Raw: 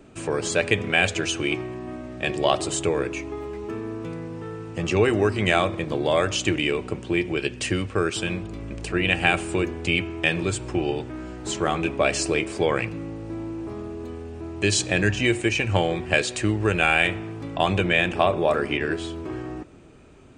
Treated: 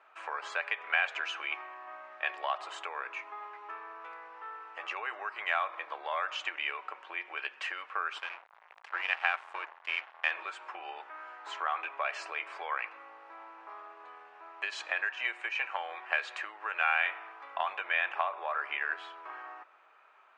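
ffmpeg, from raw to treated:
-filter_complex "[0:a]asettb=1/sr,asplit=3[s0][s1][s2];[s0]atrim=end=8.184[s3];[s1]atrim=start=8.18:end=10.31,asetpts=PTS-STARTPTS,afade=t=in:d=0.004:c=qsin,afade=t=out:st=2.126:d=0.004:c=qsin,aeval=exprs='sgn(val(0))*max(abs(val(0))-0.0335,0)':c=same[s4];[s2]atrim=start=10.306[s5];[s3][s4]acrossfade=d=0.004:c1=hsin:c2=qsin[s6];[s6][s5]acrossfade=d=0.004:c1=qsin:c2=hsin,lowpass=1400,acompressor=threshold=0.0708:ratio=6,highpass=f=970:w=0.5412,highpass=f=970:w=1.3066,volume=1.68"

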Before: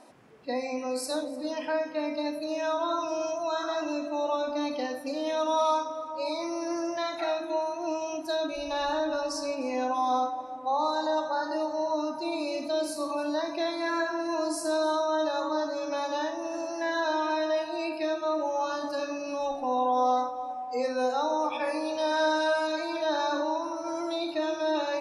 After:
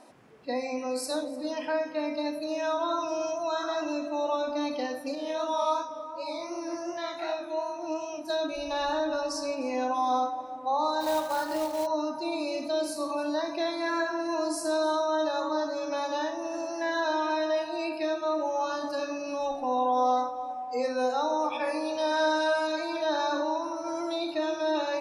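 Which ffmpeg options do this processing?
-filter_complex "[0:a]asettb=1/sr,asplit=3[s0][s1][s2];[s0]atrim=end=5.154[s3];[s1]atrim=start=5.15:end=8.3,asetpts=PTS-STARTPTS,afade=t=in:d=0.004:c=qsin,afade=t=out:st=3.146:d=0.004:c=qsin,flanger=delay=20:depth=5.7:speed=2.7[s4];[s2]atrim=start=8.296[s5];[s3][s4]acrossfade=d=0.004:c1=hsin:c2=qsin[s6];[s6][s5]acrossfade=d=0.004:c1=qsin:c2=hsin,asplit=3[s7][s8][s9];[s7]afade=t=out:st=11:d=0.02[s10];[s8]acrusher=bits=3:mode=log:mix=0:aa=0.000001,afade=t=in:st=11:d=0.02,afade=t=out:st=11.85:d=0.02[s11];[s9]afade=t=in:st=11.85:d=0.02[s12];[s10][s11][s12]amix=inputs=3:normalize=0"

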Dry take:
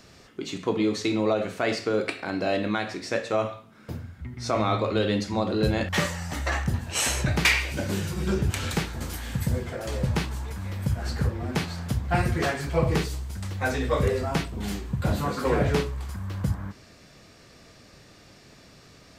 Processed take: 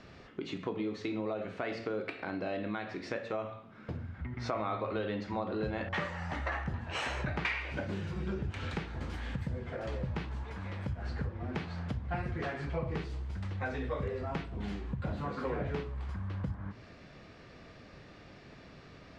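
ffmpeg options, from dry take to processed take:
-filter_complex "[0:a]asettb=1/sr,asplit=3[s0][s1][s2];[s0]atrim=end=4.144[s3];[s1]atrim=start=4.14:end=7.85,asetpts=PTS-STARTPTS,afade=t=in:d=0.004:c=qsin,afade=t=out:st=3.706:d=0.004:c=qsin,equalizer=f=1100:w=0.5:g=6[s4];[s2]atrim=start=7.846[s5];[s3][s4]acrossfade=d=0.004:c1=hsin:c2=qsin[s6];[s6][s5]acrossfade=d=0.004:c1=qsin:c2=hsin,asettb=1/sr,asplit=3[s7][s8][s9];[s7]atrim=end=10.434[s10];[s8]atrim=start=10.43:end=10.88,asetpts=PTS-STARTPTS,afade=t=in:d=0.004:c=qsin,afade=t=out:st=0.446:d=0.004:c=qsin,lowshelf=f=210:g=-8[s11];[s9]atrim=start=10.876[s12];[s10][s11]acrossfade=d=0.004:c1=hsin:c2=qsin[s13];[s13][s12]acrossfade=d=0.004:c1=qsin:c2=hsin,lowpass=2900,bandreject=f=113.7:t=h:w=4,bandreject=f=227.4:t=h:w=4,bandreject=f=341.1:t=h:w=4,bandreject=f=454.8:t=h:w=4,bandreject=f=568.5:t=h:w=4,bandreject=f=682.2:t=h:w=4,bandreject=f=795.9:t=h:w=4,bandreject=f=909.6:t=h:w=4,bandreject=f=1023.3:t=h:w=4,bandreject=f=1137:t=h:w=4,bandreject=f=1250.7:t=h:w=4,bandreject=f=1364.4:t=h:w=4,bandreject=f=1478.1:t=h:w=4,acompressor=threshold=0.0158:ratio=3"

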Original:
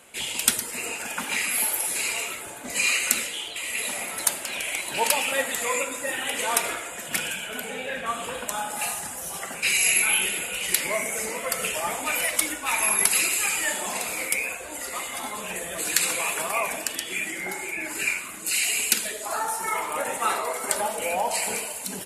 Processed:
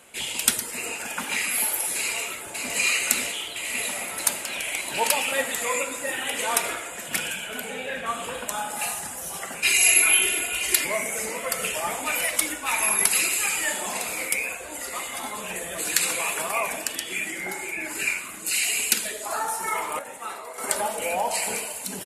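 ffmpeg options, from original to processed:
-filter_complex "[0:a]asplit=2[s0][s1];[s1]afade=t=in:st=1.99:d=0.01,afade=t=out:st=2.76:d=0.01,aecho=0:1:550|1100|1650|2200|2750|3300|3850|4400|4950|5500|6050|6600:0.595662|0.446747|0.33506|0.251295|0.188471|0.141353|0.106015|0.0795113|0.0596335|0.0447251|0.0335438|0.0251579[s2];[s0][s2]amix=inputs=2:normalize=0,asettb=1/sr,asplit=3[s3][s4][s5];[s3]atrim=end=9.634[s6];[s4]atrim=start=9.63:end=10.85,asetpts=PTS-STARTPTS,afade=t=in:d=0.004:c=qsin,afade=t=out:st=1.216:d=0.004:c=qsin,aecho=1:1:2.9:0.85,atrim=end_sample=53802[s7];[s5]atrim=start=10.846[s8];[s6][s7]acrossfade=d=0.004:c1=hsin:c2=qsin[s9];[s9][s8]acrossfade=d=0.004:c1=qsin:c2=hsin,asplit=3[s10][s11][s12];[s10]atrim=end=19.992[s13];[s11]atrim=start=19.988:end=20.582,asetpts=PTS-STARTPTS,volume=0.316[s14];[s12]atrim=start=20.578[s15];[s13][s14]acrossfade=d=0.004:c1=hsin:c2=hsin[s16];[s16][s15]acrossfade=d=0.004:c1=hsin:c2=hsin"

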